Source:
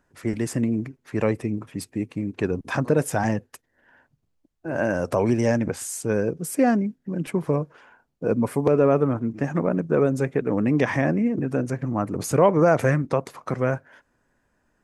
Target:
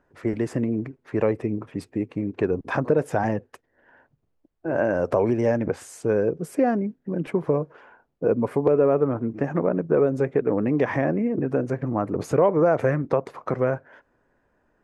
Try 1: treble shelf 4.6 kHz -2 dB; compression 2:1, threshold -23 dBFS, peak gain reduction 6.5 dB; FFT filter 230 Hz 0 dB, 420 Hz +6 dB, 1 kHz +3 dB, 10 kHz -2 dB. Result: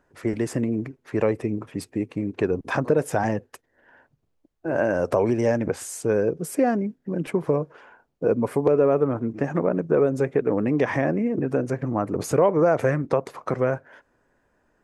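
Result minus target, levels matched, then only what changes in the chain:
8 kHz band +8.5 dB
change: treble shelf 4.6 kHz -13.5 dB

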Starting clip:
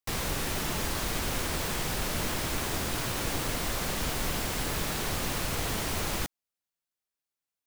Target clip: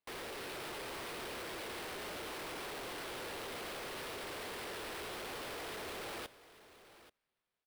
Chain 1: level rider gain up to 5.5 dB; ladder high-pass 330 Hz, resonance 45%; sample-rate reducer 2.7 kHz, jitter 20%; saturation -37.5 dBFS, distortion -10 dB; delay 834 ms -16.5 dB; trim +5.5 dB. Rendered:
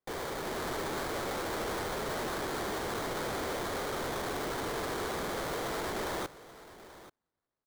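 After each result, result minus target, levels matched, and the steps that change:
saturation: distortion -5 dB; sample-rate reducer: distortion +5 dB
change: saturation -48.5 dBFS, distortion -5 dB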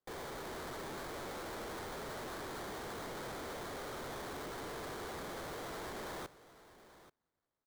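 sample-rate reducer: distortion +5 dB
change: sample-rate reducer 6.8 kHz, jitter 20%

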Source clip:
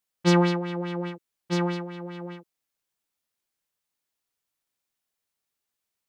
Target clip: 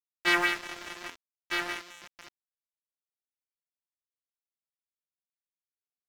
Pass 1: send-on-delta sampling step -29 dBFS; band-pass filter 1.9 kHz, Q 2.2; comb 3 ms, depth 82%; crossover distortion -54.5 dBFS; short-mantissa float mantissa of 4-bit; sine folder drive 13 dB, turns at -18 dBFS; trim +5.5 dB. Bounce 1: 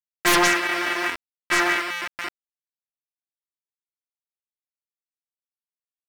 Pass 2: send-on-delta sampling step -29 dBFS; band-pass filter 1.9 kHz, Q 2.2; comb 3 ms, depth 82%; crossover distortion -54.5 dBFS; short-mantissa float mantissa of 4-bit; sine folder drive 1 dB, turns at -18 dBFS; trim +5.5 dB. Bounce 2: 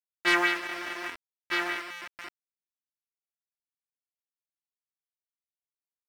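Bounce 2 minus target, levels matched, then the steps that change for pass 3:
crossover distortion: distortion -10 dB
change: crossover distortion -43 dBFS

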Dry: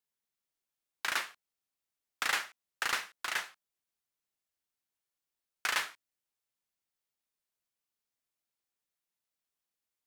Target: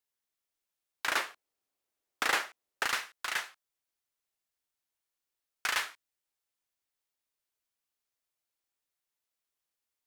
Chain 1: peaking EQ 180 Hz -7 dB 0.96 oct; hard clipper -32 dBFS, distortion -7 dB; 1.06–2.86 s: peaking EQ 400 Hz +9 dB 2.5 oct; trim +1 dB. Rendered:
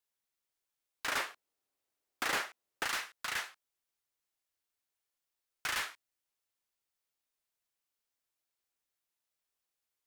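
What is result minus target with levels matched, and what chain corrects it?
hard clipper: distortion +12 dB
peaking EQ 180 Hz -7 dB 0.96 oct; hard clipper -22.5 dBFS, distortion -19 dB; 1.06–2.86 s: peaking EQ 400 Hz +9 dB 2.5 oct; trim +1 dB

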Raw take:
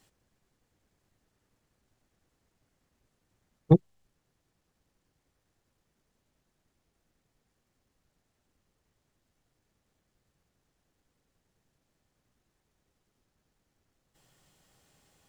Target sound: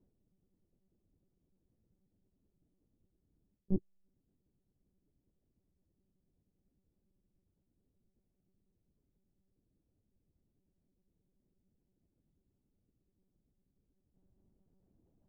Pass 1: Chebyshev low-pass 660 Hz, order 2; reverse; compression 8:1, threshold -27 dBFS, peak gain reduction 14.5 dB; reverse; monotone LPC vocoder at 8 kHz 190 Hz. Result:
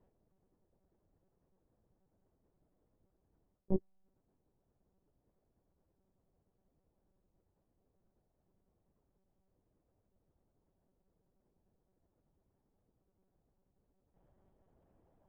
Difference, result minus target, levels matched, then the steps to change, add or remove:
500 Hz band +4.5 dB
change: Chebyshev low-pass 300 Hz, order 2

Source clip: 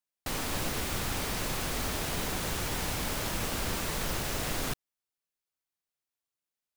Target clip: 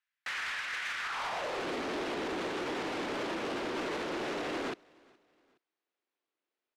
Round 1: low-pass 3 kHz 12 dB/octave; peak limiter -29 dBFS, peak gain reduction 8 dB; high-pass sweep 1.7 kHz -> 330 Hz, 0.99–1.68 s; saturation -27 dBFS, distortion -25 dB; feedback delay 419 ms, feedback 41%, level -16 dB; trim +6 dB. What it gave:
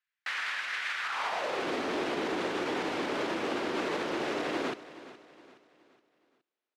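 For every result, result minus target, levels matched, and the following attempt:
saturation: distortion -13 dB; echo-to-direct +11 dB
low-pass 3 kHz 12 dB/octave; peak limiter -29 dBFS, peak gain reduction 8 dB; high-pass sweep 1.7 kHz -> 330 Hz, 0.99–1.68 s; saturation -37 dBFS, distortion -12 dB; feedback delay 419 ms, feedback 41%, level -16 dB; trim +6 dB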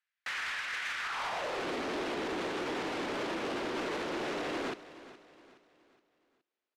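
echo-to-direct +11 dB
low-pass 3 kHz 12 dB/octave; peak limiter -29 dBFS, peak gain reduction 8 dB; high-pass sweep 1.7 kHz -> 330 Hz, 0.99–1.68 s; saturation -37 dBFS, distortion -12 dB; feedback delay 419 ms, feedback 41%, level -27 dB; trim +6 dB

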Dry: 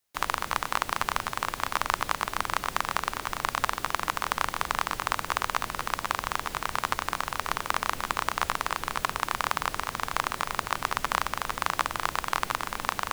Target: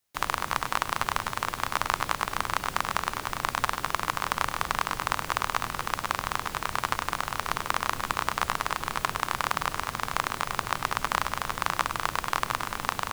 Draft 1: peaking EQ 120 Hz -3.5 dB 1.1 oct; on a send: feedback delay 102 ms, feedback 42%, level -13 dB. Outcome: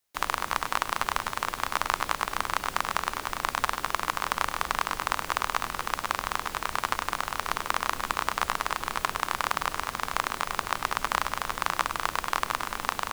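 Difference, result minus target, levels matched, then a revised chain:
125 Hz band -5.0 dB
peaking EQ 120 Hz +4 dB 1.1 oct; on a send: feedback delay 102 ms, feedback 42%, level -13 dB

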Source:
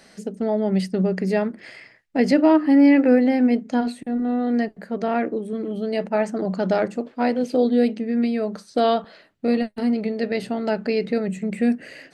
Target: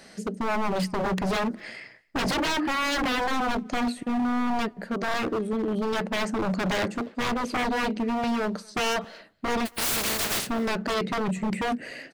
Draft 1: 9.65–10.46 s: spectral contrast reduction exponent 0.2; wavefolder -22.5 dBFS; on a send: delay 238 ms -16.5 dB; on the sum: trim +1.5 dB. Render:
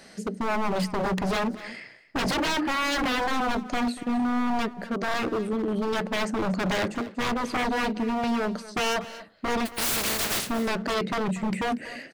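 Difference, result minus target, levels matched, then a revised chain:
echo-to-direct +11.5 dB
9.65–10.46 s: spectral contrast reduction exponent 0.2; wavefolder -22.5 dBFS; on a send: delay 238 ms -28 dB; on the sum: trim +1.5 dB

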